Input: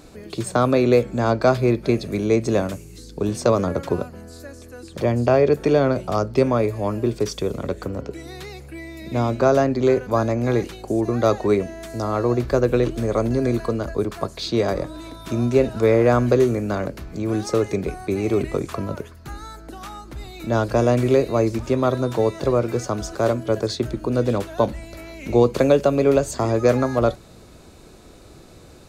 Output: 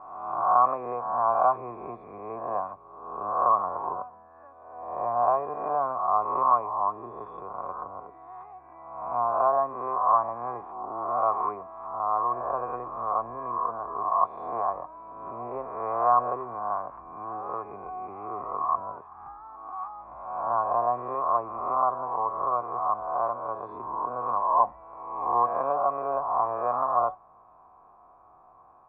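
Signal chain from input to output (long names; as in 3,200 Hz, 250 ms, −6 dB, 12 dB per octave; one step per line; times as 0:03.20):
peak hold with a rise ahead of every peak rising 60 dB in 1.21 s
formant resonators in series a
flat-topped bell 1,300 Hz +12.5 dB 1.3 octaves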